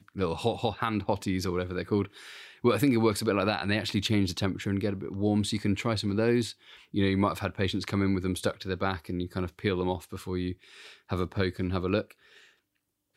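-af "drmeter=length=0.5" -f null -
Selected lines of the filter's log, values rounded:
Channel 1: DR: 12.3
Overall DR: 12.3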